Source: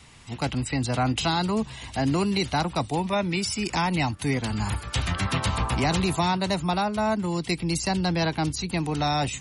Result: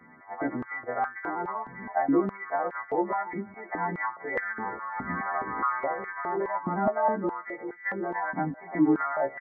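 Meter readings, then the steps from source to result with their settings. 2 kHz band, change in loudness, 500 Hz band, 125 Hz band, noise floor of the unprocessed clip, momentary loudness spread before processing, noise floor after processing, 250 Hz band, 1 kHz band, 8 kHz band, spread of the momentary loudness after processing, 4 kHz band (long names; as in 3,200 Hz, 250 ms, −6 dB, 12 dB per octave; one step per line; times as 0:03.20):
−1.5 dB, −4.0 dB, −1.0 dB, −16.0 dB, −42 dBFS, 4 LU, −50 dBFS, −4.0 dB, −1.0 dB, below −40 dB, 9 LU, below −40 dB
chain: every partial snapped to a pitch grid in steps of 2 semitones
brickwall limiter −19.5 dBFS, peak gain reduction 10 dB
multi-voice chorus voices 2, 0.26 Hz, delay 12 ms, depth 3.4 ms
linear-phase brick-wall low-pass 2,200 Hz
on a send: single-tap delay 293 ms −21 dB
on the sum: high-pass on a step sequencer 4.8 Hz 230–1,600 Hz
level +2 dB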